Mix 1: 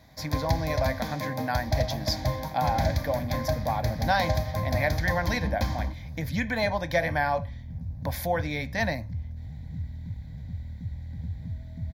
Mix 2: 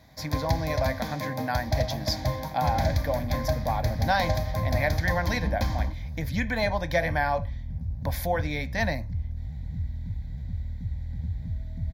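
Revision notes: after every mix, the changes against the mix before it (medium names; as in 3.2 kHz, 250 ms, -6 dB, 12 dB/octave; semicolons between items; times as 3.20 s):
second sound: remove high-pass 80 Hz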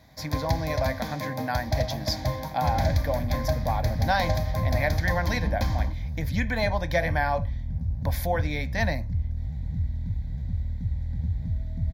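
second sound +3.5 dB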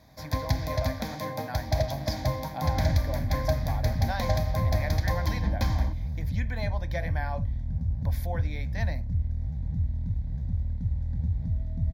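speech -9.5 dB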